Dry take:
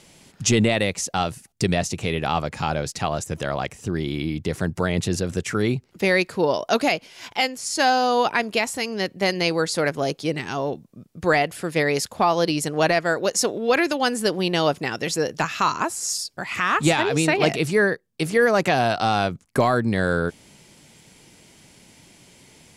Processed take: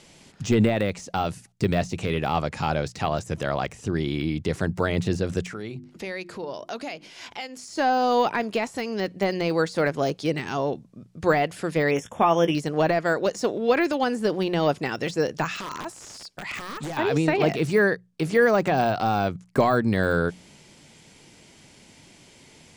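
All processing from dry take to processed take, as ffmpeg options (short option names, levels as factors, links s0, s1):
-filter_complex "[0:a]asettb=1/sr,asplit=3[s0][s1][s2];[s0]atrim=end=5.484[s3];[s1]atrim=start=5.48:end=7.68,asetpts=PTS-STARTPTS,afade=t=in:d=0.004:c=qsin,afade=t=out:st=2.196:d=0.004:c=qsin,bandreject=f=50:t=h:w=6,bandreject=f=100:t=h:w=6,bandreject=f=150:t=h:w=6,bandreject=f=200:t=h:w=6,bandreject=f=250:t=h:w=6,bandreject=f=300:t=h:w=6,bandreject=f=350:t=h:w=6,acompressor=threshold=0.0158:ratio=2.5:attack=3.2:release=140:knee=1:detection=peak[s4];[s2]atrim=start=7.676[s5];[s3][s4]acrossfade=d=0.004:c1=hsin:c2=qsin[s6];[s6][s5]acrossfade=d=0.004:c1=qsin:c2=hsin,asettb=1/sr,asplit=3[s7][s8][s9];[s7]atrim=end=11.914[s10];[s8]atrim=start=11.91:end=12.55,asetpts=PTS-STARTPTS,afade=t=in:d=0.004:c=qsin,afade=t=out:st=0.636:d=0.004:c=qsin,asuperstop=centerf=4400:order=20:qfactor=2.5,asplit=2[s11][s12];[s12]adelay=18,volume=0.266[s13];[s11][s13]amix=inputs=2:normalize=0,atrim=end_sample=28224[s14];[s9]atrim=start=12.546[s15];[s10][s14]acrossfade=d=0.004:c1=hsin:c2=qsin[s16];[s16][s15]acrossfade=d=0.004:c1=qsin:c2=hsin,asettb=1/sr,asplit=3[s17][s18][s19];[s17]atrim=end=15.484[s20];[s18]atrim=start=15.48:end=16.97,asetpts=PTS-STARTPTS,afade=t=in:d=0.004:c=qsin,afade=t=out:st=1.486:d=0.004:c=qsin,lowshelf=f=450:g=-5,acompressor=threshold=0.0562:ratio=5:attack=3.2:release=140:knee=1:detection=peak,aeval=exprs='(mod(11.9*val(0)+1,2)-1)/11.9':c=same[s21];[s19]atrim=start=16.966[s22];[s20][s21]acrossfade=d=0.004:c1=hsin:c2=qsin[s23];[s23][s22]acrossfade=d=0.004:c1=qsin:c2=hsin,lowpass=8600,deesser=0.85,bandreject=f=60:t=h:w=6,bandreject=f=120:t=h:w=6,bandreject=f=180:t=h:w=6"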